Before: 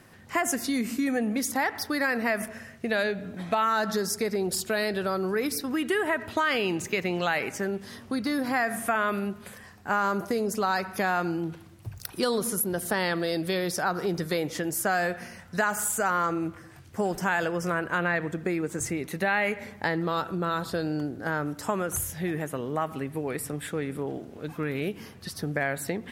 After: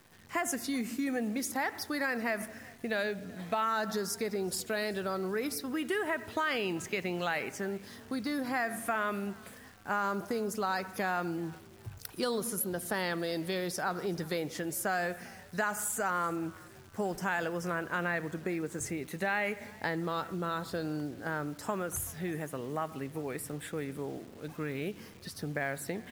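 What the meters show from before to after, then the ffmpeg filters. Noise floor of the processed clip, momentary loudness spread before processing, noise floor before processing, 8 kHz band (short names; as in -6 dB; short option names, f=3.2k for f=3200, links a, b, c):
-53 dBFS, 8 LU, -49 dBFS, -6.0 dB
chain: -filter_complex "[0:a]asplit=3[a][b][c];[b]adelay=380,afreqshift=54,volume=-23.5dB[d];[c]adelay=760,afreqshift=108,volume=-32.9dB[e];[a][d][e]amix=inputs=3:normalize=0,acrusher=bits=9:dc=4:mix=0:aa=0.000001,volume=-6dB"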